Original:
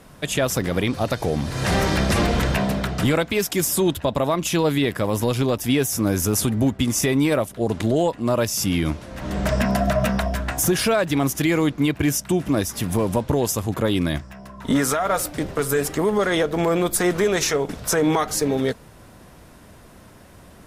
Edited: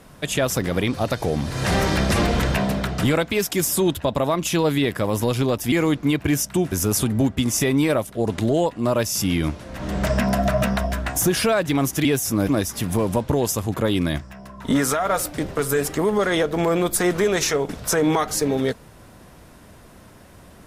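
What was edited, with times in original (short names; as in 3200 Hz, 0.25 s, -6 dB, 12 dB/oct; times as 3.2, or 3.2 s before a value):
5.72–6.14 swap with 11.47–12.47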